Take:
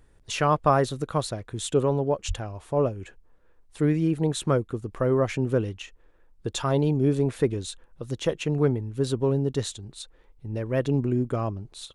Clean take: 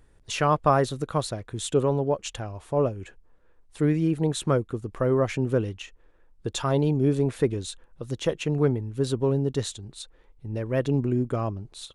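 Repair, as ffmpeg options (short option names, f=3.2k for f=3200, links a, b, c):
-filter_complex "[0:a]asplit=3[a][b][c];[a]afade=t=out:st=2.27:d=0.02[d];[b]highpass=f=140:w=0.5412,highpass=f=140:w=1.3066,afade=t=in:st=2.27:d=0.02,afade=t=out:st=2.39:d=0.02[e];[c]afade=t=in:st=2.39:d=0.02[f];[d][e][f]amix=inputs=3:normalize=0"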